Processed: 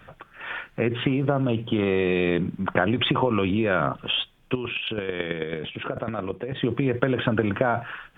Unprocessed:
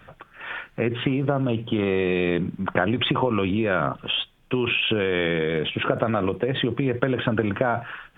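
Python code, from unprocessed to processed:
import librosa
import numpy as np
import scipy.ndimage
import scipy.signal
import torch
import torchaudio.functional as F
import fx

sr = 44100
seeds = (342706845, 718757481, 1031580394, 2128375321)

y = fx.chopper(x, sr, hz=9.1, depth_pct=60, duty_pct=10, at=(4.54, 6.64))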